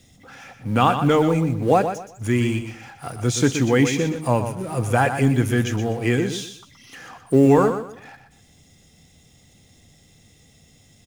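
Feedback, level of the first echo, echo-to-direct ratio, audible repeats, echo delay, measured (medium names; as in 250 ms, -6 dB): 27%, -9.0 dB, -8.5 dB, 3, 123 ms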